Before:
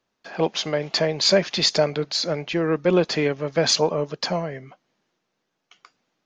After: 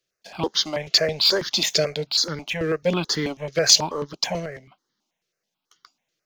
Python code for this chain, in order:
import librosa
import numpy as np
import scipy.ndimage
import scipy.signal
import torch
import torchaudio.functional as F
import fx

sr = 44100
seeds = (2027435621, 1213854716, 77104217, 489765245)

y = fx.high_shelf(x, sr, hz=2900.0, db=11.0)
y = fx.leveller(y, sr, passes=1)
y = fx.phaser_held(y, sr, hz=9.2, low_hz=240.0, high_hz=2500.0)
y = y * 10.0 ** (-4.0 / 20.0)